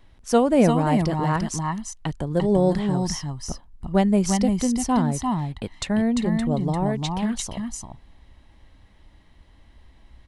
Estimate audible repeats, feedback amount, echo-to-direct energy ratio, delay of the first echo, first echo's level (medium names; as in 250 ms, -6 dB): 1, no regular repeats, -4.5 dB, 346 ms, -4.0 dB